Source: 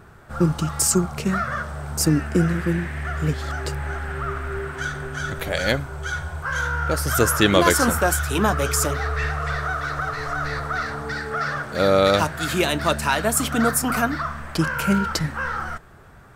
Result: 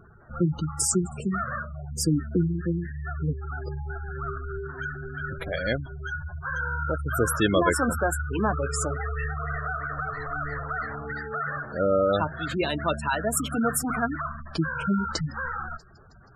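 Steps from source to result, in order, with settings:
delay with a high-pass on its return 160 ms, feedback 77%, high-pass 4,700 Hz, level −15 dB
gate on every frequency bin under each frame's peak −15 dB strong
level −4.5 dB

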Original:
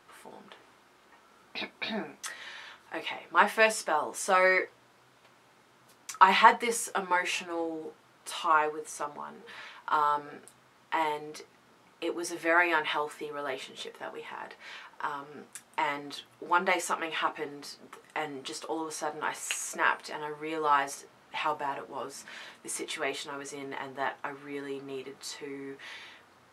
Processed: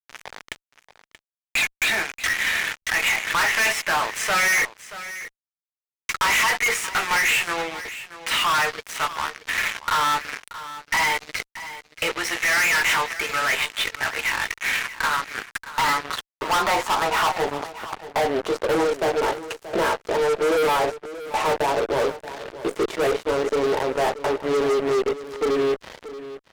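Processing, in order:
noise gate with hold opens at −47 dBFS
0:11.38–0:12.18: parametric band 590 Hz +13.5 dB 0.29 octaves
in parallel at +1 dB: downward compressor 8 to 1, threshold −40 dBFS, peak gain reduction 26 dB
on the sum: leveller curve on the samples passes 2
soft clipping −13 dBFS, distortion −13 dB
band-pass filter sweep 2,100 Hz → 480 Hz, 0:14.80–0:18.76
fuzz pedal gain 38 dB, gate −45 dBFS
on a send: single-tap delay 630 ms −14.5 dB
0:02.82–0:03.70: on the sum: background raised ahead of every attack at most 77 dB per second
level −5 dB

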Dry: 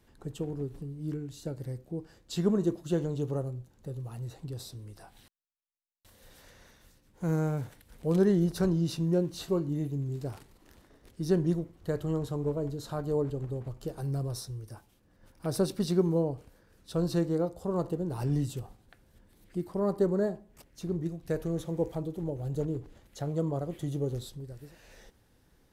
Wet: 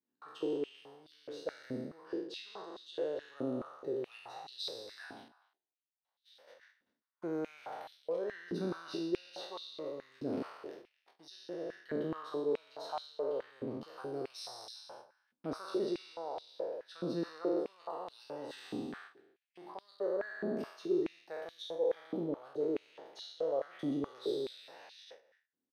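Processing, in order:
peak hold with a decay on every bin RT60 1.39 s
noise gate −50 dBFS, range −32 dB
reversed playback
downward compressor 6 to 1, threshold −35 dBFS, peak gain reduction 16 dB
reversed playback
Savitzky-Golay smoothing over 15 samples
slap from a distant wall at 43 metres, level −19 dB
high-pass on a step sequencer 4.7 Hz 250–3,700 Hz
level −1 dB

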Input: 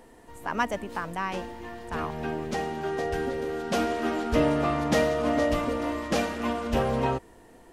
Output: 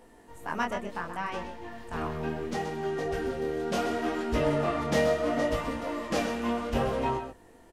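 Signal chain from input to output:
on a send: single-tap delay 128 ms −9 dB
on the sum: chorus effect 0.7 Hz, delay 18 ms, depth 8 ms
0:00.64–0:01.72: high-shelf EQ 9,200 Hz −7.5 dB

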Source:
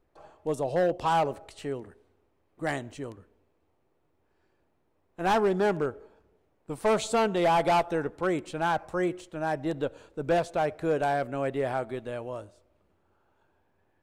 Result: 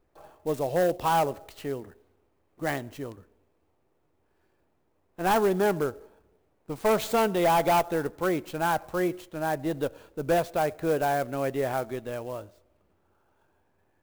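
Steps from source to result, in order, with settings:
converter with an unsteady clock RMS 0.025 ms
level +1 dB

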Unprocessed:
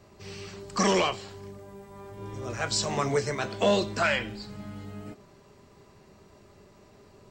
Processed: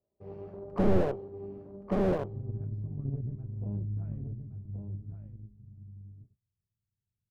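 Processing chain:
noise gate −48 dBFS, range −29 dB
low-pass filter sweep 600 Hz → 110 Hz, 0:00.85–0:02.73
harmonic generator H 4 −18 dB, 7 −20 dB, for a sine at −9.5 dBFS
on a send: single-tap delay 1,122 ms −7 dB
on the sum: slew-rate limiting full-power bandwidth 12 Hz
level +6.5 dB

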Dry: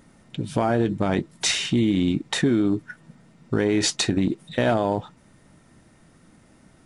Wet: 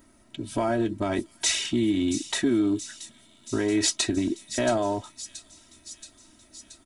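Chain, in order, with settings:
high-shelf EQ 9,500 Hz +12 dB
comb filter 3.1 ms, depth 92%
on a send: delay with a high-pass on its return 677 ms, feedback 67%, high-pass 5,000 Hz, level −8.5 dB
on the sum: level −6.5 dB

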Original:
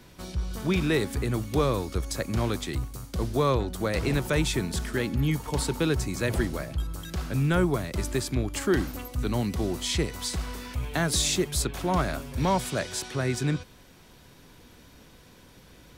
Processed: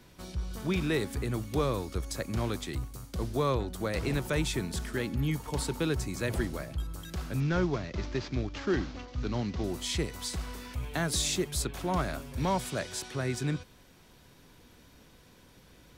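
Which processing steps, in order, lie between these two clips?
0:07.40–0:09.64: variable-slope delta modulation 32 kbit/s
level −4.5 dB

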